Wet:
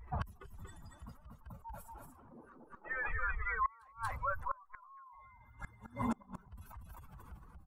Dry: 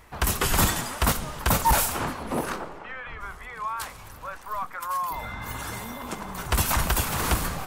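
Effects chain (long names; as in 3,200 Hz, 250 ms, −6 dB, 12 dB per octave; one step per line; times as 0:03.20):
expanding power law on the bin magnitudes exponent 2.4
single-tap delay 234 ms −4 dB
gate with flip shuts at −25 dBFS, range −29 dB
level +1 dB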